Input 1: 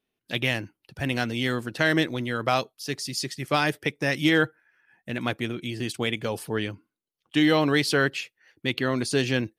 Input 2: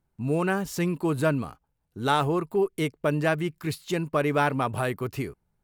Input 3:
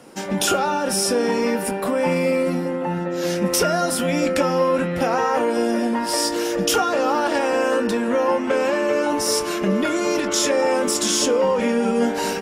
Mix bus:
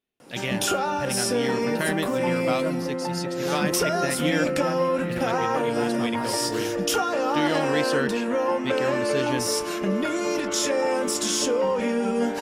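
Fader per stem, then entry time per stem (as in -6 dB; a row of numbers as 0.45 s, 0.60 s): -5.0 dB, -10.0 dB, -4.5 dB; 0.00 s, 1.40 s, 0.20 s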